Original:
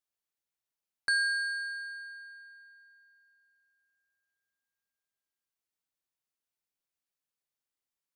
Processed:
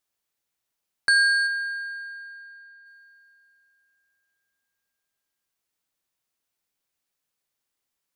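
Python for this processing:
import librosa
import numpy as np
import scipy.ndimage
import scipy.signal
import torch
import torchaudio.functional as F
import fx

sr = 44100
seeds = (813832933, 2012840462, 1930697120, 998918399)

y = fx.high_shelf(x, sr, hz=3000.0, db=-9.5, at=(1.46, 2.85), fade=0.02)
y = y + 10.0 ** (-21.0 / 20.0) * np.pad(y, (int(82 * sr / 1000.0), 0))[:len(y)]
y = y * librosa.db_to_amplitude(8.5)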